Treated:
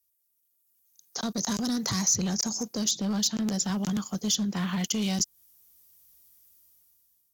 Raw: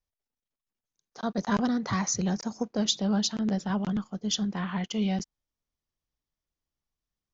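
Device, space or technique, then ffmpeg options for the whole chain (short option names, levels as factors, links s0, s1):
FM broadcast chain: -filter_complex "[0:a]highpass=47,dynaudnorm=f=280:g=7:m=6.31,acrossover=split=430|4800[s0][s1][s2];[s0]acompressor=threshold=0.0631:ratio=4[s3];[s1]acompressor=threshold=0.0178:ratio=4[s4];[s2]acompressor=threshold=0.0158:ratio=4[s5];[s3][s4][s5]amix=inputs=3:normalize=0,aemphasis=mode=production:type=50fm,alimiter=limit=0.133:level=0:latency=1:release=11,asoftclip=type=hard:threshold=0.0944,lowpass=f=15000:w=0.5412,lowpass=f=15000:w=1.3066,aemphasis=mode=production:type=50fm,volume=0.708"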